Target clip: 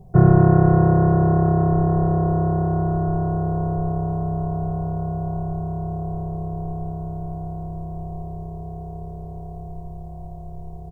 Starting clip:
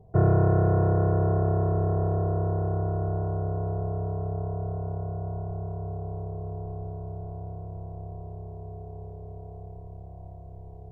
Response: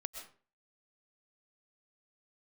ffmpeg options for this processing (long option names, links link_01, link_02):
-filter_complex "[0:a]bass=frequency=250:gain=8,treble=frequency=4000:gain=10,aecho=1:1:5.5:0.73,asplit=2[link_01][link_02];[1:a]atrim=start_sample=2205,lowshelf=frequency=410:gain=-10.5[link_03];[link_02][link_03]afir=irnorm=-1:irlink=0,volume=-1dB[link_04];[link_01][link_04]amix=inputs=2:normalize=0"